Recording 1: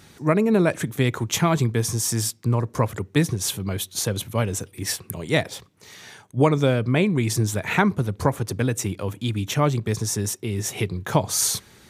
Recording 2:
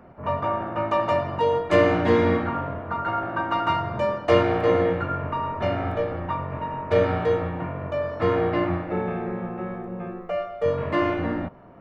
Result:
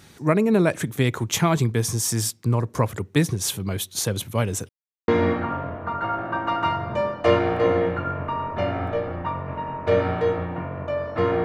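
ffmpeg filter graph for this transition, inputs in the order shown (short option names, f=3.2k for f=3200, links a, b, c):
-filter_complex "[0:a]apad=whole_dur=11.44,atrim=end=11.44,asplit=2[a][b];[a]atrim=end=4.69,asetpts=PTS-STARTPTS,afade=t=out:st=4.686:d=0.004:c=hsin[c];[b]atrim=start=4.69:end=5.08,asetpts=PTS-STARTPTS,volume=0[d];[1:a]atrim=start=2.12:end=8.48,asetpts=PTS-STARTPTS,afade=t=in:d=0.004:c=hsin[e];[c][d][e]concat=n=3:v=0:a=1"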